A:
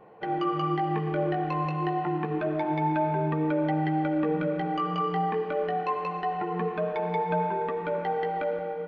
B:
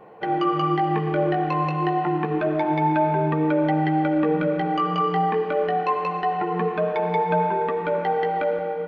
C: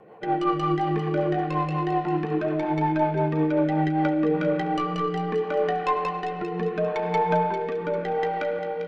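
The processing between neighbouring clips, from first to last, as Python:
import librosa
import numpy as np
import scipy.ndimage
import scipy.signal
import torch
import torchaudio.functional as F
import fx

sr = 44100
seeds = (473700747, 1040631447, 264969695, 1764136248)

y1 = fx.low_shelf(x, sr, hz=130.0, db=-4.5)
y1 = F.gain(torch.from_numpy(y1), 6.0).numpy()
y2 = fx.tracing_dist(y1, sr, depth_ms=0.04)
y2 = fx.rotary_switch(y2, sr, hz=5.5, then_hz=0.75, switch_at_s=3.58)
y2 = fx.echo_wet_highpass(y2, sr, ms=398, feedback_pct=35, hz=2100.0, wet_db=-7.5)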